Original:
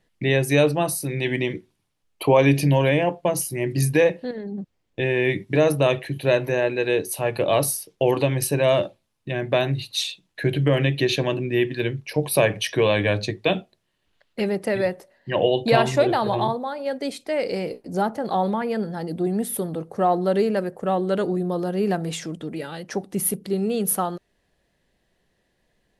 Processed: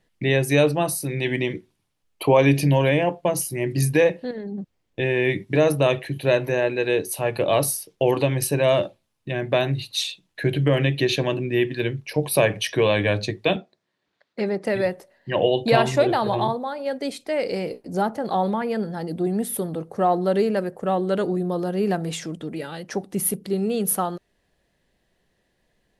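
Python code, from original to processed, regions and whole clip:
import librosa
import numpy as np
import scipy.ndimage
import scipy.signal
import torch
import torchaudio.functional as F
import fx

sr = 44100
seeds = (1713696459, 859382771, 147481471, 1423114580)

y = fx.chain(x, sr, fx.bandpass_edges(low_hz=170.0, high_hz=5600.0),
    fx.peak_eq(hz=2900.0, db=-9.0, octaves=0.32), at=(13.56, 14.65))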